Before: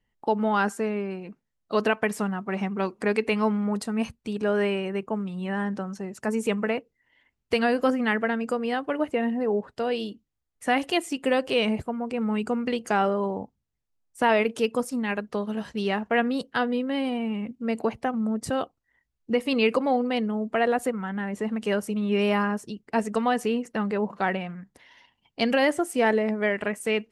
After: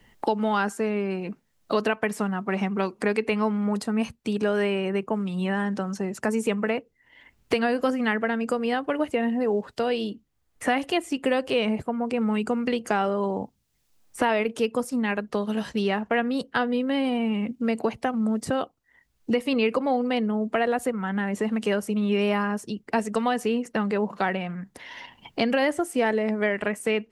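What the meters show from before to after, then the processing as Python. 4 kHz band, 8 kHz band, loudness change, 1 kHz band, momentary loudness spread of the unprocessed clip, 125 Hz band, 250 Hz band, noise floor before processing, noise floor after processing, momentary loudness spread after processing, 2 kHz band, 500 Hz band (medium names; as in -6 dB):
-0.5 dB, +0.5 dB, +0.5 dB, 0.0 dB, 8 LU, +1.5 dB, +1.0 dB, -79 dBFS, -69 dBFS, 5 LU, 0.0 dB, +0.5 dB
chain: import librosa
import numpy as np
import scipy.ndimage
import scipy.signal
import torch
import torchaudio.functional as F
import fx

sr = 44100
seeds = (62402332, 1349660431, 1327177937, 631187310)

y = fx.band_squash(x, sr, depth_pct=70)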